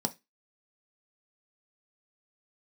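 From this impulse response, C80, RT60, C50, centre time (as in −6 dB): 30.0 dB, 0.20 s, 20.5 dB, 5 ms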